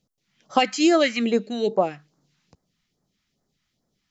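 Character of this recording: phasing stages 2, 2.4 Hz, lowest notch 440–2700 Hz

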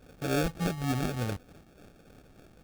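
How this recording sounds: phasing stages 6, 3.4 Hz, lowest notch 320–1200 Hz; aliases and images of a low sample rate 1 kHz, jitter 0%

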